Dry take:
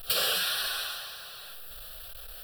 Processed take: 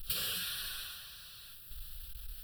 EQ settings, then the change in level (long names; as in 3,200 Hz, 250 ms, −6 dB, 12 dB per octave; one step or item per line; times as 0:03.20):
dynamic equaliser 5,500 Hz, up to −4 dB, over −44 dBFS, Q 1
guitar amp tone stack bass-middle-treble 6-0-2
low-shelf EQ 390 Hz +7.5 dB
+8.5 dB